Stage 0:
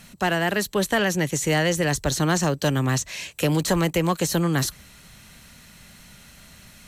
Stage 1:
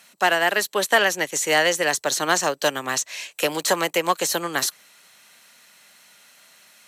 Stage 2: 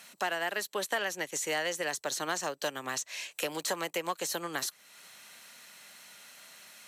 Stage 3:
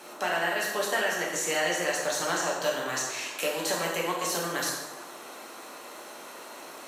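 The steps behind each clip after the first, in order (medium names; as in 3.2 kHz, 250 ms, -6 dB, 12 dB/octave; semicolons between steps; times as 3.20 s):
high-pass 520 Hz 12 dB/octave; upward expansion 1.5:1, over -39 dBFS; trim +7 dB
compression 2:1, threshold -40 dBFS, peak gain reduction 15 dB
band noise 260–1300 Hz -51 dBFS; plate-style reverb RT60 1.2 s, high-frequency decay 0.75×, DRR -3.5 dB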